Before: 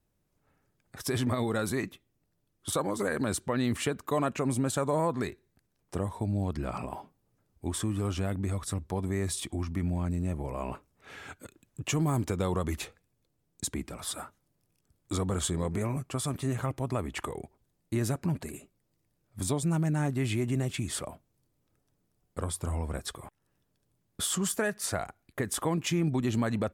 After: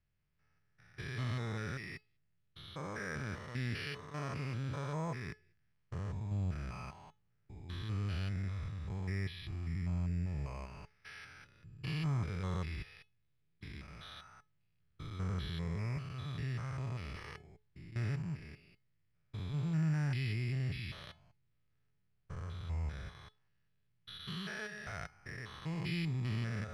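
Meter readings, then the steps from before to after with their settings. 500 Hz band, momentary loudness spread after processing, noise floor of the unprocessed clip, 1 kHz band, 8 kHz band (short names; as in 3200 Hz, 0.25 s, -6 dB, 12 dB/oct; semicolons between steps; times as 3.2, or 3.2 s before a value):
-16.0 dB, 16 LU, -76 dBFS, -12.0 dB, under -20 dB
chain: stepped spectrum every 0.2 s; EQ curve 160 Hz 0 dB, 250 Hz -12 dB, 860 Hz -8 dB, 1900 Hz +5 dB; careless resampling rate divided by 6×, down filtered, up hold; air absorption 88 m; resonator 430 Hz, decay 0.26 s, harmonics all, mix 60%; gain +4.5 dB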